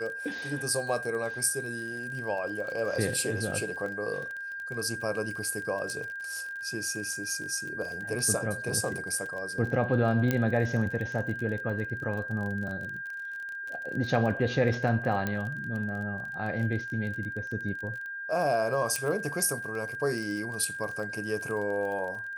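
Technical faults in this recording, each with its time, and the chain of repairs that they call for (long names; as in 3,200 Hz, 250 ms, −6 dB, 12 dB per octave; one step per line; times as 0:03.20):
surface crackle 28 per second −35 dBFS
whistle 1,600 Hz −35 dBFS
0:10.31: click −13 dBFS
0:15.27: click −16 dBFS
0:18.96: click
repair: click removal
notch filter 1,600 Hz, Q 30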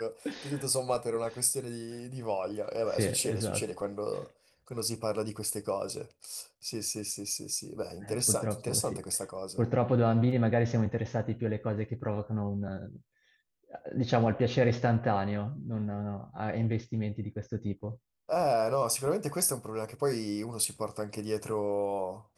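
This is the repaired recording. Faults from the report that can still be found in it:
0:10.31: click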